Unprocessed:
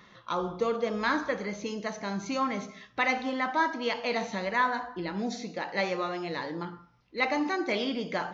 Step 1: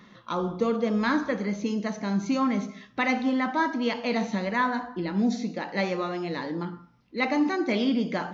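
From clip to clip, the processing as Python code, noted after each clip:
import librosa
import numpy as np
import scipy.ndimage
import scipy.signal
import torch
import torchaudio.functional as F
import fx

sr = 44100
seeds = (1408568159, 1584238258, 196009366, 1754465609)

y = fx.peak_eq(x, sr, hz=230.0, db=10.0, octaves=0.99)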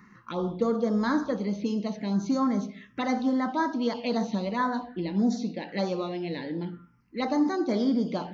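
y = fx.env_phaser(x, sr, low_hz=570.0, high_hz=2700.0, full_db=-21.5)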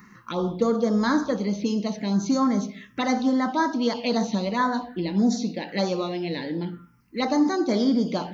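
y = fx.high_shelf(x, sr, hz=6100.0, db=12.0)
y = F.gain(torch.from_numpy(y), 3.5).numpy()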